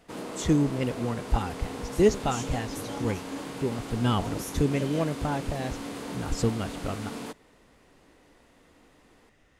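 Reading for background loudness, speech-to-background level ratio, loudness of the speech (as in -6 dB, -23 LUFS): -37.0 LUFS, 7.5 dB, -29.5 LUFS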